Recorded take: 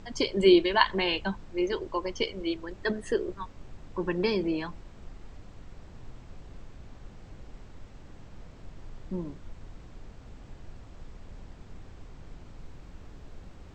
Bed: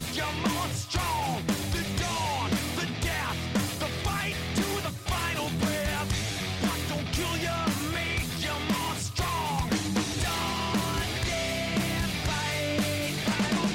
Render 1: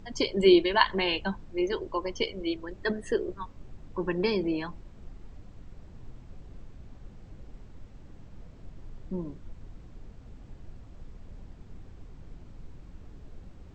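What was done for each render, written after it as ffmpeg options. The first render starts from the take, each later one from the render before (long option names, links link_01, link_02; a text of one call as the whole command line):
ffmpeg -i in.wav -af "afftdn=noise_reduction=6:noise_floor=-49" out.wav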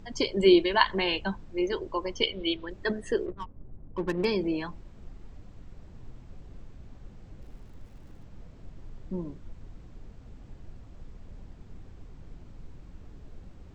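ffmpeg -i in.wav -filter_complex "[0:a]asettb=1/sr,asplit=3[link_01][link_02][link_03];[link_01]atrim=end=2.234[link_04];[link_02]atrim=start=2.23:end=2.7,asetpts=PTS-STARTPTS,afade=type=in:duration=0.004:curve=qsin,afade=type=out:start_time=0.466:duration=0.004:curve=qsin,lowpass=frequency=3400:width_type=q:width=3.5[link_05];[link_03]atrim=start=2.696[link_06];[link_04][link_05]acrossfade=duration=0.004:curve1=hsin:curve2=qsin[link_07];[link_07][link_06]acrossfade=duration=0.004:curve1=qsin:curve2=hsin,asettb=1/sr,asplit=3[link_08][link_09][link_10];[link_08]atrim=end=3.264[link_11];[link_09]atrim=start=3.26:end=4.25,asetpts=PTS-STARTPTS,afade=type=in:duration=0.004:curve=qsin,afade=type=out:start_time=0.986:duration=0.004:curve=qsin,adynamicsmooth=sensitivity=6.5:basefreq=560[link_12];[link_10]atrim=start=4.246[link_13];[link_11][link_12]acrossfade=duration=0.004:curve1=hsin:curve2=qsin[link_14];[link_14][link_13]acrossfade=duration=0.004:curve1=qsin:curve2=hsin,asettb=1/sr,asplit=3[link_15][link_16][link_17];[link_15]atrim=end=7.424[link_18];[link_16]atrim=start=7.42:end=8.26,asetpts=PTS-STARTPTS,afade=type=in:duration=0.004:curve=qsin,afade=type=out:start_time=0.836:duration=0.004:curve=qsin,aeval=exprs='val(0)*gte(abs(val(0)),0.00112)':channel_layout=same[link_19];[link_17]atrim=start=8.256[link_20];[link_18][link_19]acrossfade=duration=0.004:curve1=hsin:curve2=qsin[link_21];[link_21][link_20]acrossfade=duration=0.004:curve1=qsin:curve2=hsin" out.wav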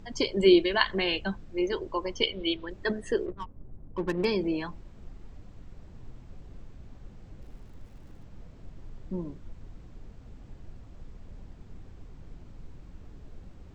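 ffmpeg -i in.wav -filter_complex "[0:a]asettb=1/sr,asplit=3[link_01][link_02][link_03];[link_01]atrim=end=0.474[link_04];[link_02]atrim=start=0.47:end=1.52,asetpts=PTS-STARTPTS,afade=type=in:duration=0.004:curve=qsin,afade=type=out:start_time=1.046:duration=0.004:curve=qsin,equalizer=frequency=940:width=5.9:gain=-9.5[link_05];[link_03]atrim=start=1.516[link_06];[link_04][link_05]acrossfade=duration=0.004:curve1=hsin:curve2=qsin[link_07];[link_07][link_06]acrossfade=duration=0.004:curve1=qsin:curve2=hsin" out.wav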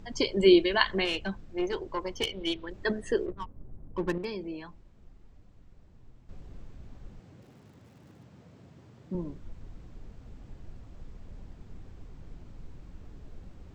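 ffmpeg -i in.wav -filter_complex "[0:a]asettb=1/sr,asplit=3[link_01][link_02][link_03];[link_01]atrim=end=1.054[link_04];[link_02]atrim=start=1.05:end=2.74,asetpts=PTS-STARTPTS,afade=type=in:duration=0.004:curve=qsin,afade=type=out:start_time=1.686:duration=0.004:curve=qsin,aeval=exprs='(tanh(11.2*val(0)+0.45)-tanh(0.45))/11.2':channel_layout=same[link_05];[link_03]atrim=start=2.736[link_06];[link_04][link_05]acrossfade=duration=0.004:curve1=hsin:curve2=qsin[link_07];[link_07][link_06]acrossfade=duration=0.004:curve1=qsin:curve2=hsin,asettb=1/sr,asplit=3[link_08][link_09][link_10];[link_08]atrim=end=7.194[link_11];[link_09]atrim=start=7.19:end=9.15,asetpts=PTS-STARTPTS,afade=type=in:duration=0.004:curve=qsin,afade=type=out:start_time=1.956:duration=0.004:curve=qsin,highpass=frequency=100:width=0.5412,highpass=frequency=100:width=1.3066[link_12];[link_10]atrim=start=9.146[link_13];[link_11][link_12]acrossfade=duration=0.004:curve1=hsin:curve2=qsin[link_14];[link_14][link_13]acrossfade=duration=0.004:curve1=qsin:curve2=hsin,asplit=3[link_15][link_16][link_17];[link_15]atrim=end=4.182[link_18];[link_16]atrim=start=4.178:end=6.292,asetpts=PTS-STARTPTS,volume=-9dB[link_19];[link_17]atrim=start=6.288[link_20];[link_18][link_19]acrossfade=duration=0.004:curve1=hsin:curve2=hsin[link_21];[link_21][link_20]acrossfade=duration=0.004:curve1=hsin:curve2=hsin" out.wav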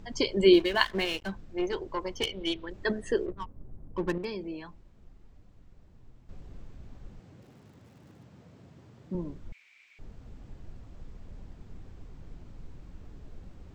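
ffmpeg -i in.wav -filter_complex "[0:a]asettb=1/sr,asplit=3[link_01][link_02][link_03];[link_01]atrim=end=0.534[link_04];[link_02]atrim=start=0.53:end=1.32,asetpts=PTS-STARTPTS,afade=type=in:duration=0.004:curve=qsin,afade=type=out:start_time=0.786:duration=0.004:curve=qsin,aeval=exprs='sgn(val(0))*max(abs(val(0))-0.00708,0)':channel_layout=same[link_05];[link_03]atrim=start=1.316[link_06];[link_04][link_05]acrossfade=duration=0.004:curve1=hsin:curve2=qsin[link_07];[link_07][link_06]acrossfade=duration=0.004:curve1=qsin:curve2=hsin,asettb=1/sr,asplit=3[link_08][link_09][link_10];[link_08]atrim=end=9.524[link_11];[link_09]atrim=start=9.52:end=9.99,asetpts=PTS-STARTPTS,afade=type=in:duration=0.004:curve=qsin,afade=type=out:start_time=0.466:duration=0.004:curve=qsin,highpass=frequency=2300:width_type=q:width=12[link_12];[link_10]atrim=start=9.986[link_13];[link_11][link_12]acrossfade=duration=0.004:curve1=hsin:curve2=qsin[link_14];[link_14][link_13]acrossfade=duration=0.004:curve1=qsin:curve2=hsin" out.wav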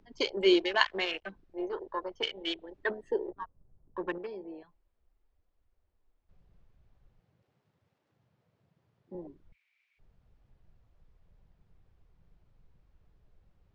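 ffmpeg -i in.wav -filter_complex "[0:a]afwtdn=0.0141,acrossover=split=360 5900:gain=0.126 1 0.158[link_01][link_02][link_03];[link_01][link_02][link_03]amix=inputs=3:normalize=0" out.wav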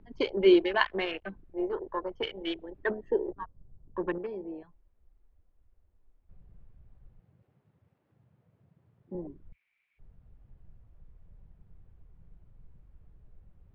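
ffmpeg -i in.wav -af "lowpass=2700,lowshelf=frequency=310:gain=9.5" out.wav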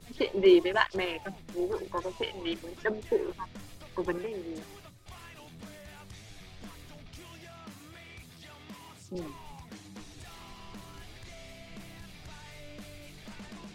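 ffmpeg -i in.wav -i bed.wav -filter_complex "[1:a]volume=-19.5dB[link_01];[0:a][link_01]amix=inputs=2:normalize=0" out.wav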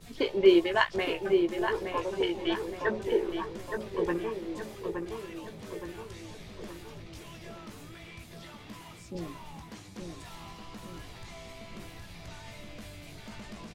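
ffmpeg -i in.wav -filter_complex "[0:a]asplit=2[link_01][link_02];[link_02]adelay=18,volume=-7dB[link_03];[link_01][link_03]amix=inputs=2:normalize=0,asplit=2[link_04][link_05];[link_05]adelay=869,lowpass=frequency=2100:poles=1,volume=-5dB,asplit=2[link_06][link_07];[link_07]adelay=869,lowpass=frequency=2100:poles=1,volume=0.54,asplit=2[link_08][link_09];[link_09]adelay=869,lowpass=frequency=2100:poles=1,volume=0.54,asplit=2[link_10][link_11];[link_11]adelay=869,lowpass=frequency=2100:poles=1,volume=0.54,asplit=2[link_12][link_13];[link_13]adelay=869,lowpass=frequency=2100:poles=1,volume=0.54,asplit=2[link_14][link_15];[link_15]adelay=869,lowpass=frequency=2100:poles=1,volume=0.54,asplit=2[link_16][link_17];[link_17]adelay=869,lowpass=frequency=2100:poles=1,volume=0.54[link_18];[link_04][link_06][link_08][link_10][link_12][link_14][link_16][link_18]amix=inputs=8:normalize=0" out.wav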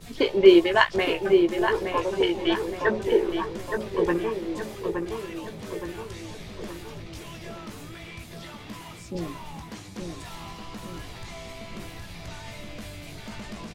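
ffmpeg -i in.wav -af "volume=6dB" out.wav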